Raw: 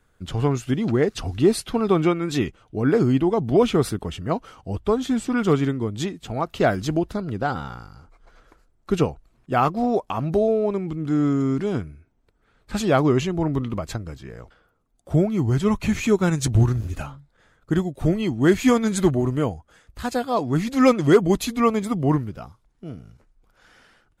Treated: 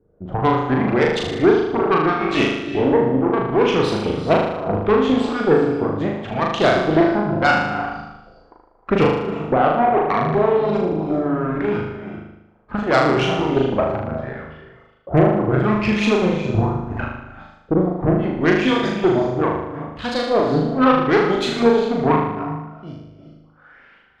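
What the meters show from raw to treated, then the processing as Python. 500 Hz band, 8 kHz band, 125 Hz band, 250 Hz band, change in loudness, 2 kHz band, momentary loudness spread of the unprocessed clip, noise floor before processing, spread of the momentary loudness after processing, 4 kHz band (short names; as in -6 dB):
+5.0 dB, n/a, 0.0 dB, +2.0 dB, +3.5 dB, +8.5 dB, 13 LU, -65 dBFS, 12 LU, +6.0 dB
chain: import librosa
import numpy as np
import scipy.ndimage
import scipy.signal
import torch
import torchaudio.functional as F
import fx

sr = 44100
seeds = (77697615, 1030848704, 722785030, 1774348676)

y = fx.low_shelf(x, sr, hz=220.0, db=3.0)
y = fx.filter_lfo_lowpass(y, sr, shape='saw_up', hz=0.74, low_hz=400.0, high_hz=5100.0, q=2.5)
y = fx.rider(y, sr, range_db=4, speed_s=0.5)
y = fx.rev_gated(y, sr, seeds[0], gate_ms=430, shape='rising', drr_db=9.0)
y = 10.0 ** (-5.5 / 20.0) * np.tanh(y / 10.0 ** (-5.5 / 20.0))
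y = fx.cheby_harmonics(y, sr, harmonics=(4,), levels_db=(-13,), full_scale_db=-7.0)
y = fx.low_shelf(y, sr, hz=92.0, db=-11.5)
y = fx.dereverb_blind(y, sr, rt60_s=0.65)
y = fx.room_flutter(y, sr, wall_m=6.6, rt60_s=0.89)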